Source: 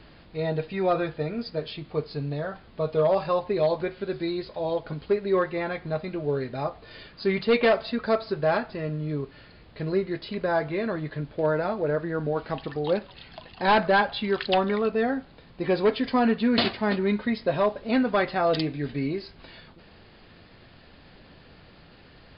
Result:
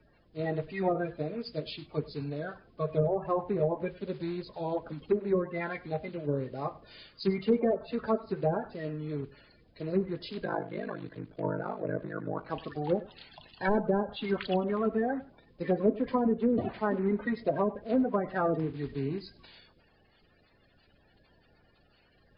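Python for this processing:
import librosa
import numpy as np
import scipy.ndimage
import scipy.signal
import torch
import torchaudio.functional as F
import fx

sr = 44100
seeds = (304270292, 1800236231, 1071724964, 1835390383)

y = fx.spec_quant(x, sr, step_db=30)
y = fx.env_lowpass_down(y, sr, base_hz=540.0, full_db=-18.5)
y = fx.ring_mod(y, sr, carrier_hz=26.0, at=(10.44, 12.48))
y = y + 10.0 ** (-18.5 / 20.0) * np.pad(y, (int(100 * sr / 1000.0), 0))[:len(y)]
y = fx.band_widen(y, sr, depth_pct=40)
y = F.gain(torch.from_numpy(y), -3.5).numpy()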